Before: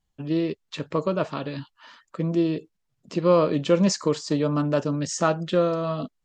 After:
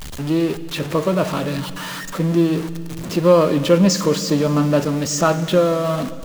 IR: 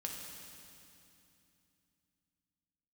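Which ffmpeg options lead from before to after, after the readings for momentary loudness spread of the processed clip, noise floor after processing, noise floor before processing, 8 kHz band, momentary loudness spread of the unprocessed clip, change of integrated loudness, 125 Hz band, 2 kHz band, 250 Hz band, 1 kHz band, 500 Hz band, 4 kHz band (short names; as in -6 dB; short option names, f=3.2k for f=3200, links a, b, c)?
11 LU, -31 dBFS, -76 dBFS, +8.5 dB, 12 LU, +6.0 dB, +7.0 dB, +8.0 dB, +6.5 dB, +6.0 dB, +6.0 dB, +8.5 dB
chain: -filter_complex "[0:a]aeval=exprs='val(0)+0.5*0.0335*sgn(val(0))':c=same,asplit=2[a][b];[1:a]atrim=start_sample=2205[c];[b][c]afir=irnorm=-1:irlink=0,volume=-7dB[d];[a][d]amix=inputs=2:normalize=0,volume=2dB"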